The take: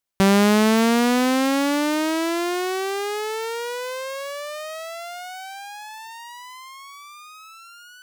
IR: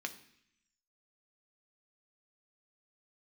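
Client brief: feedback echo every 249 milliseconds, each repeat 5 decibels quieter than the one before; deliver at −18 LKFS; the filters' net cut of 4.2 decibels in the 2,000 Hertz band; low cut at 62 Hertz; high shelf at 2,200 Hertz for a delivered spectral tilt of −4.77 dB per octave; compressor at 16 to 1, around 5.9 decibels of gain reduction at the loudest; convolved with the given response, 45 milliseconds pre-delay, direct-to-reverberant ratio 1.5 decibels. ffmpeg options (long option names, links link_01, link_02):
-filter_complex "[0:a]highpass=62,equalizer=frequency=2000:width_type=o:gain=-3.5,highshelf=frequency=2200:gain=-3.5,acompressor=threshold=-19dB:ratio=16,aecho=1:1:249|498|747|996|1245|1494|1743:0.562|0.315|0.176|0.0988|0.0553|0.031|0.0173,asplit=2[link_01][link_02];[1:a]atrim=start_sample=2205,adelay=45[link_03];[link_02][link_03]afir=irnorm=-1:irlink=0,volume=-2dB[link_04];[link_01][link_04]amix=inputs=2:normalize=0,volume=4.5dB"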